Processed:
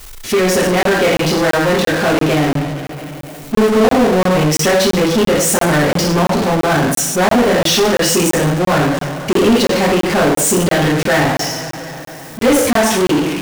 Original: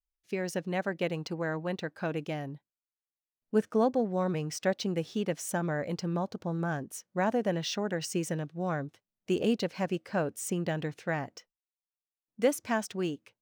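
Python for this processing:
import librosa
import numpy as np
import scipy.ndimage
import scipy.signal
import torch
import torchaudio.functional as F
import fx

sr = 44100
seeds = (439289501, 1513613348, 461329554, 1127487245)

y = fx.rev_double_slope(x, sr, seeds[0], early_s=0.56, late_s=1.7, knee_db=-26, drr_db=-8.0)
y = fx.power_curve(y, sr, exponent=0.35)
y = fx.buffer_crackle(y, sr, first_s=0.83, period_s=0.34, block=1024, kind='zero')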